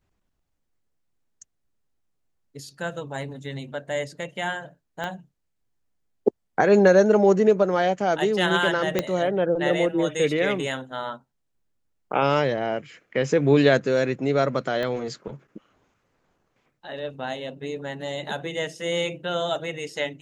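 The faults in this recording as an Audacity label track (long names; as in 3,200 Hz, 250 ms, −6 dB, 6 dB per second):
5.040000	5.040000	click −18 dBFS
8.990000	8.990000	click −8 dBFS
14.830000	14.830000	click −17 dBFS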